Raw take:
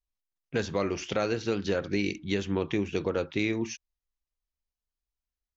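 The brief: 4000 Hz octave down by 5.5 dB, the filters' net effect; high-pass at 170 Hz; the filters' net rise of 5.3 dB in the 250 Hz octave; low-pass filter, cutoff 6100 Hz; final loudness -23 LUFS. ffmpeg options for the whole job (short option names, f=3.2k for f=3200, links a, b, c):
-af "highpass=170,lowpass=6.1k,equalizer=f=250:t=o:g=8.5,equalizer=f=4k:t=o:g=-6.5,volume=4.5dB"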